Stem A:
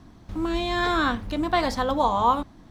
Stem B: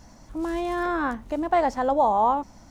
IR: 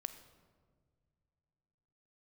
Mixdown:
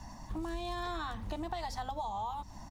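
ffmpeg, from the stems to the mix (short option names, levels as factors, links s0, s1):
-filter_complex "[0:a]volume=0.631[s0];[1:a]aecho=1:1:1.1:0.7,volume=-1,adelay=0.3,volume=0.841,asplit=2[s1][s2];[s2]apad=whole_len=119152[s3];[s0][s3]sidechaingate=range=0.0224:threshold=0.00891:ratio=16:detection=peak[s4];[s4][s1]amix=inputs=2:normalize=0,acrossover=split=130|3000[s5][s6][s7];[s6]acompressor=threshold=0.0316:ratio=6[s8];[s5][s8][s7]amix=inputs=3:normalize=0,equalizer=f=1000:t=o:w=0.5:g=4.5,acompressor=threshold=0.0158:ratio=4"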